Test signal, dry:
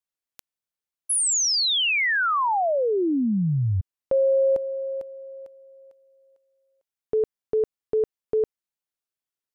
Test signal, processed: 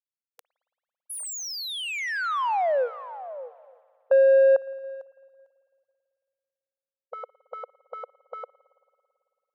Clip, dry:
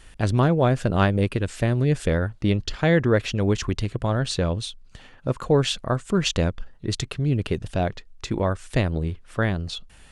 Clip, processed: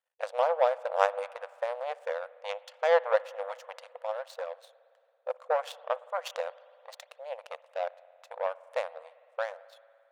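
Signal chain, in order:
power curve on the samples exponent 2
linear-phase brick-wall high-pass 480 Hz
tilt shelving filter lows +7.5 dB, about 1,400 Hz
spring reverb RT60 2.5 s, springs 55 ms, chirp 65 ms, DRR 19 dB

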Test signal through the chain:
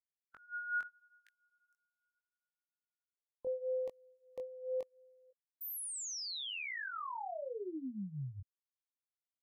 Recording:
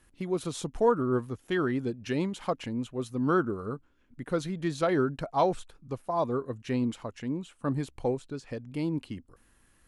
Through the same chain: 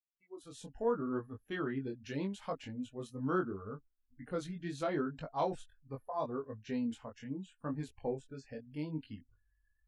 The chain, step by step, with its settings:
fade in at the beginning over 1.05 s
noise reduction from a noise print of the clip's start 25 dB
chorus effect 0.77 Hz, delay 19 ms, depth 3.5 ms
level −5.5 dB

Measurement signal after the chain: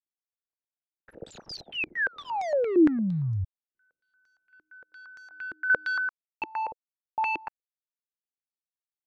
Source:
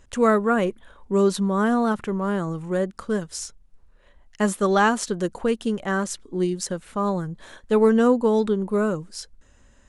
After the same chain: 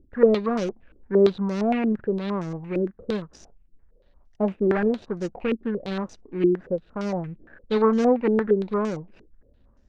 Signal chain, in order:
running median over 41 samples
low-pass on a step sequencer 8.7 Hz 330–5,800 Hz
level −3 dB

